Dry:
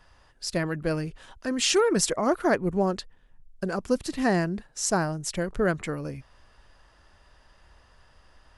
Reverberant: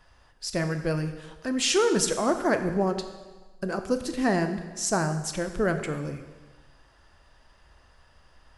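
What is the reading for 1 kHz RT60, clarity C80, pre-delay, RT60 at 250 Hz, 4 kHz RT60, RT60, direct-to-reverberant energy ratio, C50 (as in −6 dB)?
1.3 s, 11.0 dB, 6 ms, 1.3 s, 1.2 s, 1.3 s, 7.5 dB, 9.5 dB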